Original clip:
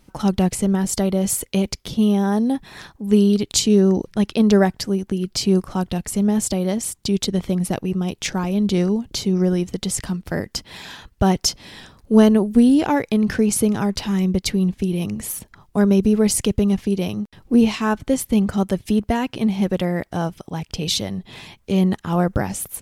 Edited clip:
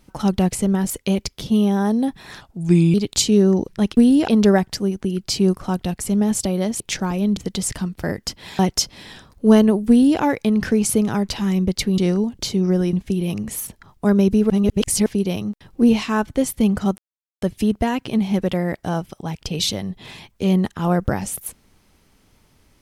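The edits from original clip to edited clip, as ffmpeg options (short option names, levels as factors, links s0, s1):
-filter_complex "[0:a]asplit=14[s0][s1][s2][s3][s4][s5][s6][s7][s8][s9][s10][s11][s12][s13];[s0]atrim=end=0.902[s14];[s1]atrim=start=1.368:end=2.884[s15];[s2]atrim=start=2.88:end=3.32,asetpts=PTS-STARTPTS,asetrate=36603,aresample=44100,atrim=end_sample=23378,asetpts=PTS-STARTPTS[s16];[s3]atrim=start=3.316:end=4.352[s17];[s4]atrim=start=12.558:end=12.872[s18];[s5]atrim=start=4.348:end=6.872[s19];[s6]atrim=start=8.128:end=8.702[s20];[s7]atrim=start=9.648:end=10.872[s21];[s8]atrim=start=11.258:end=14.652[s22];[s9]atrim=start=8.698:end=9.652[s23];[s10]atrim=start=14.648:end=16.222[s24];[s11]atrim=start=16.218:end=16.782,asetpts=PTS-STARTPTS,areverse[s25];[s12]atrim=start=16.778:end=18.7,asetpts=PTS-STARTPTS,afade=t=out:st=1.918:d=0.004:c=hsin,apad=pad_dur=0.44[s26];[s13]atrim=start=18.7,asetpts=PTS-STARTPTS,afade=t=in:d=0.004:c=hsin[s27];[s14][s15]acrossfade=d=0.004:c1=hsin:c2=hsin[s28];[s28][s16]acrossfade=d=0.004:c1=hsin:c2=hsin[s29];[s29][s17]acrossfade=d=0.004:c1=hsin:c2=hsin[s30];[s30][s18]acrossfade=d=0.004:c1=hsin:c2=hsin[s31];[s31][s19]acrossfade=d=0.004:c1=hsin:c2=hsin[s32];[s32][s20]acrossfade=d=0.004:c1=hsin:c2=hsin[s33];[s33][s21]acrossfade=d=0.004:c1=hsin:c2=hsin[s34];[s34][s22]acrossfade=d=0.004:c1=hsin:c2=hsin[s35];[s35][s23]acrossfade=d=0.004:c1=hsin:c2=hsin[s36];[s36][s24]acrossfade=d=0.004:c1=hsin:c2=hsin[s37];[s37][s25]acrossfade=d=0.004:c1=hsin:c2=hsin[s38];[s26][s27]concat=n=2:v=0:a=1[s39];[s38][s39]acrossfade=d=0.004:c1=hsin:c2=hsin"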